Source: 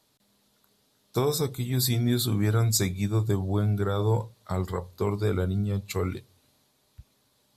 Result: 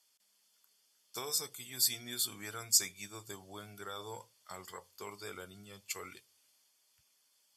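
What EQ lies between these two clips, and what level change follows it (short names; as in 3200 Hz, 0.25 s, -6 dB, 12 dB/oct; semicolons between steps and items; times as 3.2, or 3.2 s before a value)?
Butterworth band-stop 3900 Hz, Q 5.7; band-pass 6800 Hz, Q 0.52; 0.0 dB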